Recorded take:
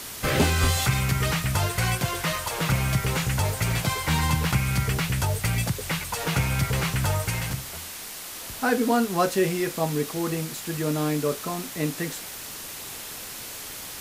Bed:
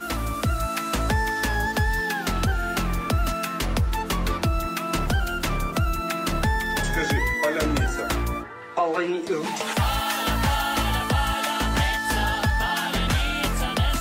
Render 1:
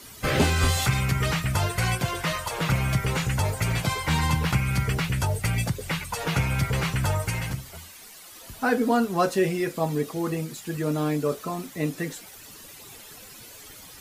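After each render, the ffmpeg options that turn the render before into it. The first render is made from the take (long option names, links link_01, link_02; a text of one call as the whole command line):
ffmpeg -i in.wav -af "afftdn=noise_reduction=12:noise_floor=-38" out.wav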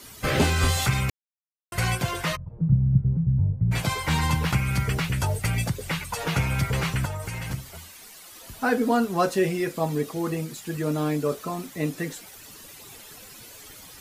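ffmpeg -i in.wav -filter_complex "[0:a]asplit=3[link_01][link_02][link_03];[link_01]afade=type=out:start_time=2.35:duration=0.02[link_04];[link_02]lowpass=frequency=160:width_type=q:width=2,afade=type=in:start_time=2.35:duration=0.02,afade=type=out:start_time=3.71:duration=0.02[link_05];[link_03]afade=type=in:start_time=3.71:duration=0.02[link_06];[link_04][link_05][link_06]amix=inputs=3:normalize=0,asettb=1/sr,asplit=3[link_07][link_08][link_09];[link_07]atrim=end=7.054[link_10];[link_08]atrim=start=7.05:end=7.5,asetpts=PTS-STARTPTS,afade=type=in:duration=0.004:curve=qsin,afade=type=out:start_time=0.446:duration=0.004:curve=qsin,acompressor=threshold=-28dB:ratio=6:attack=3.2:release=140:knee=1:detection=peak[link_11];[link_09]atrim=start=7.496[link_12];[link_10][link_11]acrossfade=duration=0.004:curve1=hsin:curve2=qsin[link_13];[link_13][link_12]acrossfade=duration=0.004:curve1=qsin:curve2=hsin,asplit=3[link_14][link_15][link_16];[link_14]atrim=end=1.1,asetpts=PTS-STARTPTS,afade=type=out:start_time=1.096:duration=0.004:curve=hsin[link_17];[link_15]atrim=start=1.1:end=1.72,asetpts=PTS-STARTPTS,volume=0[link_18];[link_16]atrim=start=1.72,asetpts=PTS-STARTPTS,afade=type=in:duration=0.004:curve=hsin[link_19];[link_17][link_18][link_19]concat=n=3:v=0:a=1" out.wav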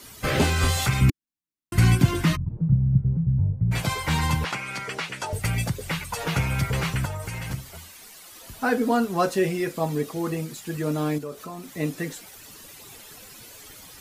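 ffmpeg -i in.wav -filter_complex "[0:a]asettb=1/sr,asplit=3[link_01][link_02][link_03];[link_01]atrim=end=1.014[link_04];[link_02]atrim=start=1.01:end=2.57,asetpts=PTS-STARTPTS,afade=type=in:duration=0.004:curve=qsin,afade=type=out:start_time=1.556:duration=0.004:curve=qsin,lowshelf=frequency=390:width_type=q:width=3:gain=8.5[link_05];[link_03]atrim=start=2.566[link_06];[link_04][link_05]acrossfade=duration=0.004:curve1=hsin:curve2=qsin[link_07];[link_07][link_06]acrossfade=duration=0.004:curve1=qsin:curve2=hsin,asettb=1/sr,asplit=3[link_08][link_09][link_10];[link_08]atrim=end=4.444[link_11];[link_09]atrim=start=4.44:end=5.33,asetpts=PTS-STARTPTS,afade=type=in:duration=0.004:curve=qsin,afade=type=out:start_time=0.886:duration=0.004:curve=qsin,highpass=370,lowpass=7700[link_12];[link_10]atrim=start=5.326[link_13];[link_11][link_12]acrossfade=duration=0.004:curve1=hsin:curve2=qsin[link_14];[link_14][link_13]acrossfade=duration=0.004:curve1=qsin:curve2=hsin,asettb=1/sr,asplit=3[link_15][link_16][link_17];[link_15]atrim=end=11.184[link_18];[link_16]atrim=start=11.18:end=11.76,asetpts=PTS-STARTPTS,afade=type=in:duration=0.004:curve=qsin,afade=type=out:start_time=0.576:duration=0.004:curve=qsin,acompressor=threshold=-37dB:ratio=2:attack=3.2:release=140:knee=1:detection=peak[link_19];[link_17]atrim=start=11.756[link_20];[link_18][link_19]acrossfade=duration=0.004:curve1=hsin:curve2=qsin[link_21];[link_21][link_20]acrossfade=duration=0.004:curve1=qsin:curve2=hsin" out.wav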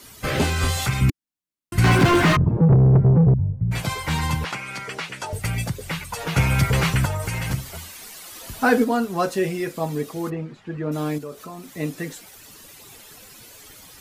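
ffmpeg -i in.wav -filter_complex "[0:a]asettb=1/sr,asplit=3[link_01][link_02][link_03];[link_01]atrim=end=1.844[link_04];[link_02]atrim=start=1.84:end=3.34,asetpts=PTS-STARTPTS,afade=type=in:duration=0.004:curve=qsin,afade=type=out:start_time=1.496:duration=0.004:curve=qsin,asplit=2[link_05][link_06];[link_06]highpass=frequency=720:poles=1,volume=35dB,asoftclip=type=tanh:threshold=-6dB[link_07];[link_05][link_07]amix=inputs=2:normalize=0,lowpass=frequency=1100:poles=1,volume=-6dB[link_08];[link_03]atrim=start=3.336[link_09];[link_04][link_08]acrossfade=duration=0.004:curve1=hsin:curve2=qsin[link_10];[link_10][link_09]acrossfade=duration=0.004:curve1=qsin:curve2=hsin,asplit=3[link_11][link_12][link_13];[link_11]afade=type=out:start_time=6.36:duration=0.02[link_14];[link_12]acontrast=51,afade=type=in:start_time=6.36:duration=0.02,afade=type=out:start_time=8.83:duration=0.02[link_15];[link_13]afade=type=in:start_time=8.83:duration=0.02[link_16];[link_14][link_15][link_16]amix=inputs=3:normalize=0,asplit=3[link_17][link_18][link_19];[link_17]afade=type=out:start_time=10.29:duration=0.02[link_20];[link_18]lowpass=2000,afade=type=in:start_time=10.29:duration=0.02,afade=type=out:start_time=10.91:duration=0.02[link_21];[link_19]afade=type=in:start_time=10.91:duration=0.02[link_22];[link_20][link_21][link_22]amix=inputs=3:normalize=0" out.wav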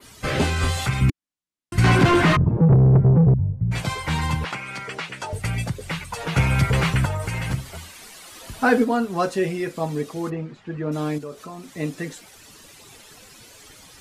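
ffmpeg -i in.wav -af "adynamicequalizer=threshold=0.00631:dfrequency=5900:dqfactor=1.2:tfrequency=5900:tqfactor=1.2:attack=5:release=100:ratio=0.375:range=2.5:mode=cutabove:tftype=bell,lowpass=9600" out.wav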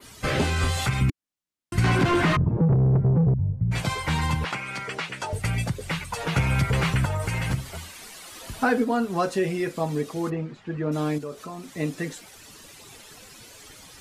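ffmpeg -i in.wav -af "acompressor=threshold=-20dB:ratio=2.5" out.wav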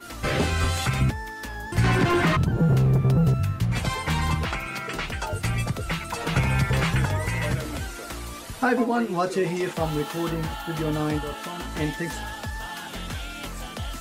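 ffmpeg -i in.wav -i bed.wav -filter_complex "[1:a]volume=-10.5dB[link_01];[0:a][link_01]amix=inputs=2:normalize=0" out.wav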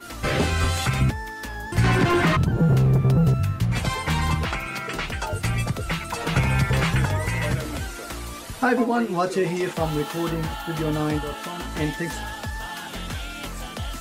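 ffmpeg -i in.wav -af "volume=1.5dB" out.wav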